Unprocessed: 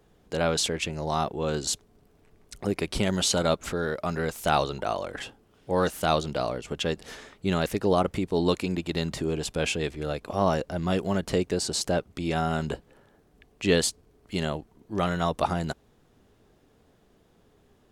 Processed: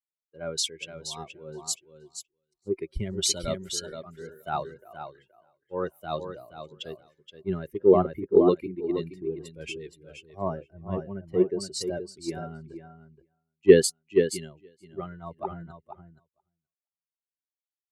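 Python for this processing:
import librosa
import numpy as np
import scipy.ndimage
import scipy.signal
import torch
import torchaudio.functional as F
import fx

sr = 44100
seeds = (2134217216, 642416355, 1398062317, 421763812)

p1 = fx.bin_expand(x, sr, power=2.0)
p2 = fx.peak_eq(p1, sr, hz=380.0, db=13.5, octaves=0.4)
p3 = p2 + fx.echo_feedback(p2, sr, ms=474, feedback_pct=15, wet_db=-5.0, dry=0)
p4 = fx.band_widen(p3, sr, depth_pct=100)
y = p4 * librosa.db_to_amplitude(-5.5)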